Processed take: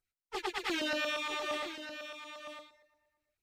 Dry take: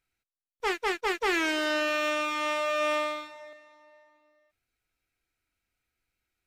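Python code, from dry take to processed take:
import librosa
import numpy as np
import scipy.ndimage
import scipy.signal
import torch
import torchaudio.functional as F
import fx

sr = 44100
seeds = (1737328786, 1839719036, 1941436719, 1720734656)

p1 = fx.stretch_vocoder_free(x, sr, factor=0.53)
p2 = fx.dynamic_eq(p1, sr, hz=3700.0, q=1.7, threshold_db=-53.0, ratio=4.0, max_db=6)
p3 = fx.filter_lfo_notch(p2, sr, shape='saw_down', hz=8.6, low_hz=230.0, high_hz=2800.0, q=0.74)
p4 = p3 + fx.echo_single(p3, sr, ms=963, db=-10.5, dry=0)
y = F.gain(torch.from_numpy(p4), -2.5).numpy()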